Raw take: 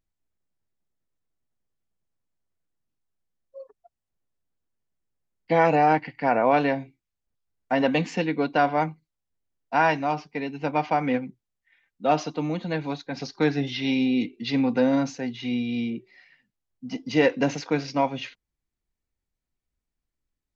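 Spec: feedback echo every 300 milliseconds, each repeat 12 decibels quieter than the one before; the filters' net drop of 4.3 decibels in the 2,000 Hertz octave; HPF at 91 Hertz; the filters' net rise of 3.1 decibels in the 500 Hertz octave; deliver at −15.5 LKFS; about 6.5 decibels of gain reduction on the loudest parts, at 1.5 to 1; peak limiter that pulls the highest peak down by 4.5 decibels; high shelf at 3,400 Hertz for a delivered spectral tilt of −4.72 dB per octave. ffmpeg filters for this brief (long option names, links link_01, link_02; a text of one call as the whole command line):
ffmpeg -i in.wav -af "highpass=91,equalizer=frequency=500:width_type=o:gain=4,equalizer=frequency=2000:width_type=o:gain=-8,highshelf=frequency=3400:gain=6,acompressor=threshold=-31dB:ratio=1.5,alimiter=limit=-17.5dB:level=0:latency=1,aecho=1:1:300|600|900:0.251|0.0628|0.0157,volume=14dB" out.wav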